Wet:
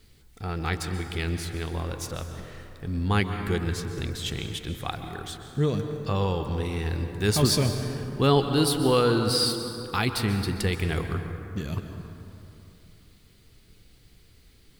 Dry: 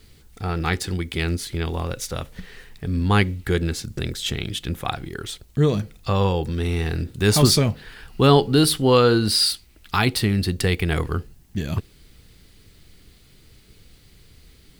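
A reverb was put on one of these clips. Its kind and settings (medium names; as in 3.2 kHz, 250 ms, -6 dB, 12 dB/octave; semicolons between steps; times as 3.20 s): plate-style reverb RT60 3.1 s, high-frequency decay 0.4×, pre-delay 115 ms, DRR 6.5 dB; trim -6 dB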